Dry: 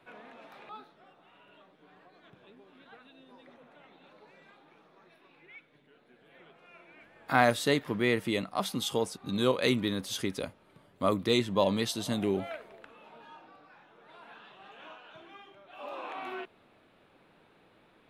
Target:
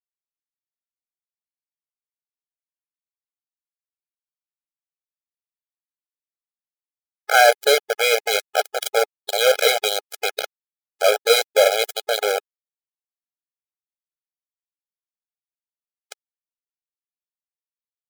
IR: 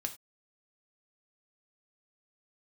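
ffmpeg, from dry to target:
-filter_complex "[0:a]adynamicequalizer=threshold=0.00178:dfrequency=10000:dqfactor=0.88:tfrequency=10000:tqfactor=0.88:attack=5:release=100:ratio=0.375:range=3.5:mode=cutabove:tftype=bell,asplit=2[link_01][link_02];[link_02]acompressor=threshold=-41dB:ratio=10,volume=1dB[link_03];[link_01][link_03]amix=inputs=2:normalize=0,aeval=exprs='val(0)*gte(abs(val(0)),0.0668)':channel_layout=same,apsyclip=18.5dB,afftfilt=real='re*eq(mod(floor(b*sr/1024/420),2),1)':imag='im*eq(mod(floor(b*sr/1024/420),2),1)':win_size=1024:overlap=0.75,volume=-3dB"

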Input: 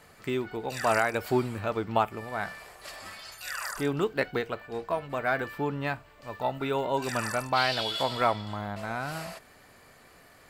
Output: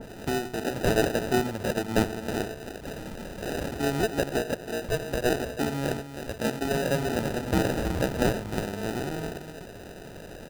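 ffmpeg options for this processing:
ffmpeg -i in.wav -filter_complex "[0:a]highpass=120,asplit=2[link_01][link_02];[link_02]acompressor=threshold=-37dB:ratio=6,volume=-1.5dB[link_03];[link_01][link_03]amix=inputs=2:normalize=0,aecho=1:1:93|320:0.237|0.316,acrusher=samples=40:mix=1:aa=0.000001,acompressor=mode=upward:threshold=-33dB:ratio=2.5,adynamicequalizer=threshold=0.0126:dfrequency=1700:dqfactor=0.7:tfrequency=1700:tqfactor=0.7:attack=5:release=100:ratio=0.375:range=1.5:mode=cutabove:tftype=highshelf" out.wav

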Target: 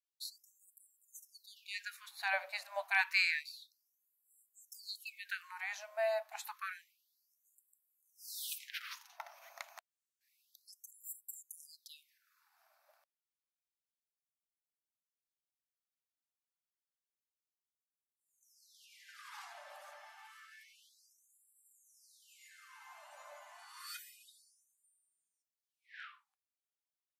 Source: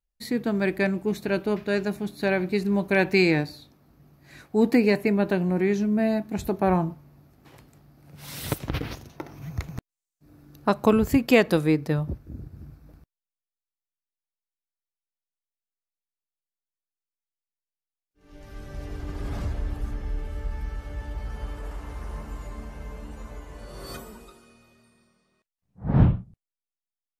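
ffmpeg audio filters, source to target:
ffmpeg -i in.wav -filter_complex "[0:a]asettb=1/sr,asplit=3[link_01][link_02][link_03];[link_01]atrim=end=23.764[link_04];[link_02]atrim=start=23.76:end=25.89,asetpts=PTS-STARTPTS,afade=type=in:duration=0.004:curve=qsin,afade=type=out:start_time=2.126:duration=0.004:curve=qsin,aecho=1:1:5.7:0.59,atrim=end_sample=93933[link_05];[link_03]atrim=start=25.886[link_06];[link_04][link_05]acrossfade=duration=0.004:curve1=hsin:curve2=qsin[link_07];[link_07][link_06]acrossfade=duration=0.004:curve1=qsin:curve2=hsin,afftfilt=real='re*gte(b*sr/1024,530*pow(7400/530,0.5+0.5*sin(2*PI*0.29*pts/sr)))':imag='im*gte(b*sr/1024,530*pow(7400/530,0.5+0.5*sin(2*PI*0.29*pts/sr)))':win_size=1024:overlap=0.75,volume=-5dB" out.wav

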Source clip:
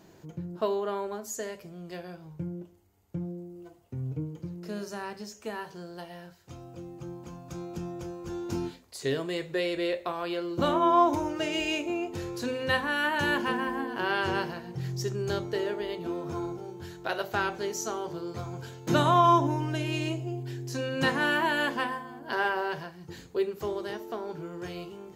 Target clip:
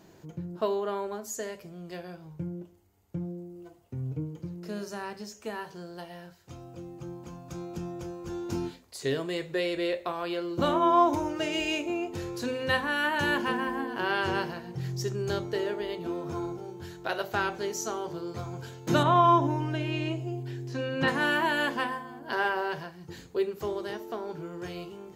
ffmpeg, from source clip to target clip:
ffmpeg -i in.wav -filter_complex "[0:a]asettb=1/sr,asplit=3[link_01][link_02][link_03];[link_01]atrim=end=19.034[link_04];[link_02]atrim=start=19.03:end=21.08,asetpts=PTS-STARTPTS,afade=type=in:duration=0.004:curve=qsin,afade=type=out:start_time=2.046:duration=0.004:curve=qsin,acrossover=split=4000[link_05][link_06];[link_06]acompressor=threshold=-60dB:ratio=4:attack=1:release=60[link_07];[link_05][link_07]amix=inputs=2:normalize=0[link_08];[link_03]atrim=start=21.076[link_09];[link_04][link_08]acrossfade=duration=0.004:curve1=hsin:curve2=qsin[link_10];[link_10][link_09]acrossfade=duration=0.004:curve1=qsin:curve2=hsin" out.wav

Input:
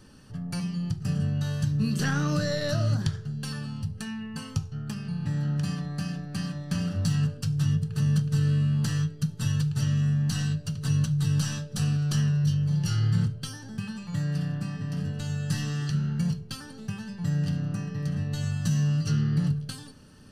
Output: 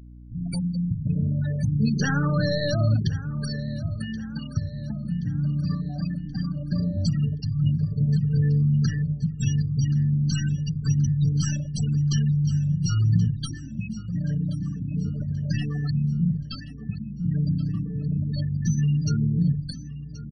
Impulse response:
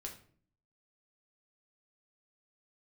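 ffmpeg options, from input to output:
-filter_complex "[0:a]acrossover=split=150[link_01][link_02];[link_01]acrusher=bits=6:mix=0:aa=0.000001[link_03];[link_03][link_02]amix=inputs=2:normalize=0,acrossover=split=320|3000[link_04][link_05][link_06];[link_05]acompressor=threshold=-29dB:ratio=2.5[link_07];[link_04][link_07][link_06]amix=inputs=3:normalize=0,afftfilt=real='re*gte(hypot(re,im),0.0398)':imag='im*gte(hypot(re,im),0.0398)':win_size=1024:overlap=0.75,highshelf=frequency=4300:gain=3,bandreject=frequency=50:width_type=h:width=6,bandreject=frequency=100:width_type=h:width=6,bandreject=frequency=150:width_type=h:width=6,bandreject=frequency=200:width_type=h:width=6,bandreject=frequency=250:width_type=h:width=6,bandreject=frequency=300:width_type=h:width=6,aecho=1:1:1077|2154|3231|4308:0.158|0.0777|0.0381|0.0186,areverse,acompressor=mode=upward:threshold=-39dB:ratio=2.5,areverse,aeval=exprs='val(0)+0.00447*(sin(2*PI*60*n/s)+sin(2*PI*2*60*n/s)/2+sin(2*PI*3*60*n/s)/3+sin(2*PI*4*60*n/s)/4+sin(2*PI*5*60*n/s)/5)':channel_layout=same,volume=4.5dB"

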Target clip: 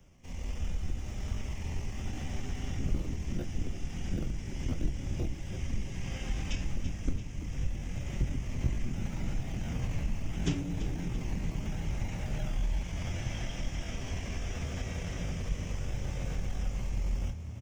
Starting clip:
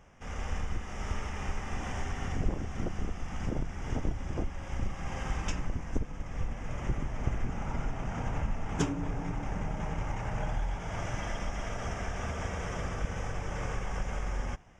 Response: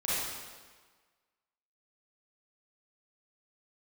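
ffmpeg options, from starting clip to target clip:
-filter_complex "[0:a]equalizer=frequency=1100:width_type=o:width=1.6:gain=-11.5,bandreject=frequency=440:width=12,asplit=2[link_01][link_02];[link_02]adelay=23,volume=-8.5dB[link_03];[link_01][link_03]amix=inputs=2:normalize=0,acrossover=split=110|460|1600[link_04][link_05][link_06][link_07];[link_06]acrusher=samples=20:mix=1:aa=0.000001:lfo=1:lforange=12:lforate=0.86[link_08];[link_07]dynaudnorm=framelen=460:gausssize=11:maxgain=5dB[link_09];[link_04][link_05][link_08][link_09]amix=inputs=4:normalize=0,atempo=0.84,acrossover=split=5000[link_10][link_11];[link_11]acompressor=threshold=-55dB:ratio=4:attack=1:release=60[link_12];[link_10][link_12]amix=inputs=2:normalize=0,asplit=7[link_13][link_14][link_15][link_16][link_17][link_18][link_19];[link_14]adelay=337,afreqshift=35,volume=-11.5dB[link_20];[link_15]adelay=674,afreqshift=70,volume=-16.4dB[link_21];[link_16]adelay=1011,afreqshift=105,volume=-21.3dB[link_22];[link_17]adelay=1348,afreqshift=140,volume=-26.1dB[link_23];[link_18]adelay=1685,afreqshift=175,volume=-31dB[link_24];[link_19]adelay=2022,afreqshift=210,volume=-35.9dB[link_25];[link_13][link_20][link_21][link_22][link_23][link_24][link_25]amix=inputs=7:normalize=0"

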